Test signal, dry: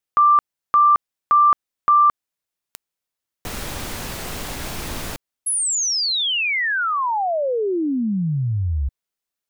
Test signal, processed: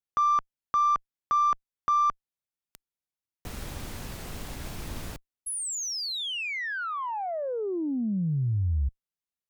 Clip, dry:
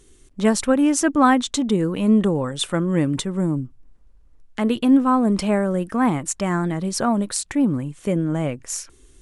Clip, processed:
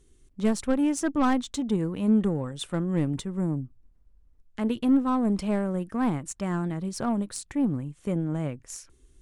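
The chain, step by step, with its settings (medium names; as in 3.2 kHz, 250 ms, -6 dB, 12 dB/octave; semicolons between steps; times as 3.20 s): Chebyshev shaper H 2 -31 dB, 3 -12 dB, 4 -35 dB, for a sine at -4.5 dBFS; saturation -19 dBFS; bass shelf 260 Hz +8 dB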